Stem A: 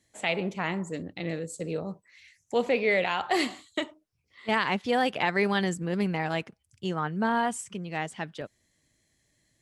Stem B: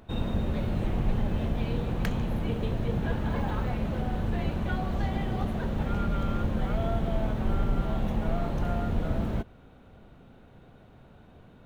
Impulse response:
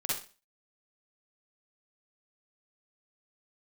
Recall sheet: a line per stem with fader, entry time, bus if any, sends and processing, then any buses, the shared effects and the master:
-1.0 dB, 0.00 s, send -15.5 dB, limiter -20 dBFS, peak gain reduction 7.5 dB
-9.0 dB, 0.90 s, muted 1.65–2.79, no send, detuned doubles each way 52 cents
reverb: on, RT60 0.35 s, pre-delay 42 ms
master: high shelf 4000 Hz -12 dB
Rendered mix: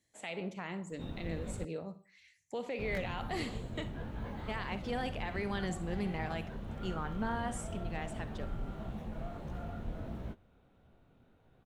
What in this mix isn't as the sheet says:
stem A -1.0 dB -> -9.5 dB; master: missing high shelf 4000 Hz -12 dB

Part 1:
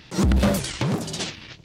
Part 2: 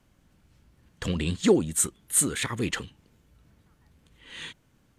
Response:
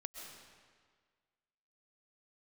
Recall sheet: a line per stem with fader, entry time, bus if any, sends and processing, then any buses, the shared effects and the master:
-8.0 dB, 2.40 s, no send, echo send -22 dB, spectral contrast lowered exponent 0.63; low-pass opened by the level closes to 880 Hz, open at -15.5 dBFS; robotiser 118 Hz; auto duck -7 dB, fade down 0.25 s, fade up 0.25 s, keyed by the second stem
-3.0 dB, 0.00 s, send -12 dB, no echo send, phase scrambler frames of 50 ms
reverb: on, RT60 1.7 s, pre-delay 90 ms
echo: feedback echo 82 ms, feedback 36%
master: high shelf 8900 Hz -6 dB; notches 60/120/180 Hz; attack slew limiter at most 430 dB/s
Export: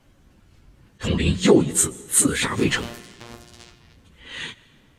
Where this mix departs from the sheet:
stem 1: missing low-pass opened by the level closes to 880 Hz, open at -15.5 dBFS; stem 2 -3.0 dB -> +6.5 dB

